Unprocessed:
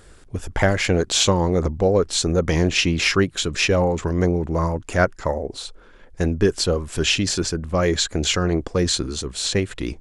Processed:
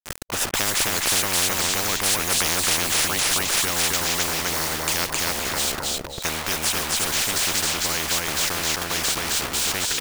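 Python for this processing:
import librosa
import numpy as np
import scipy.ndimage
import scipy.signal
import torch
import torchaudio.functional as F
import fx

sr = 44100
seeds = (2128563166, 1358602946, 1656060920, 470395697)

p1 = fx.doppler_pass(x, sr, speed_mps=15, closest_m=15.0, pass_at_s=2.47)
p2 = fx.quant_dither(p1, sr, seeds[0], bits=8, dither='none')
p3 = p2 + fx.echo_feedback(p2, sr, ms=265, feedback_pct=21, wet_db=-4, dry=0)
y = fx.spectral_comp(p3, sr, ratio=10.0)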